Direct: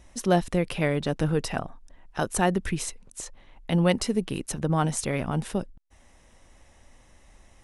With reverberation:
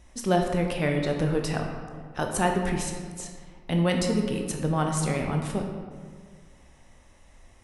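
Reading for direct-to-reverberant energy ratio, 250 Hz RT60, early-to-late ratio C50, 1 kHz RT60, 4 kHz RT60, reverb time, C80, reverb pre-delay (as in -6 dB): 2.0 dB, 1.9 s, 4.0 dB, 1.6 s, 0.95 s, 1.8 s, 5.5 dB, 15 ms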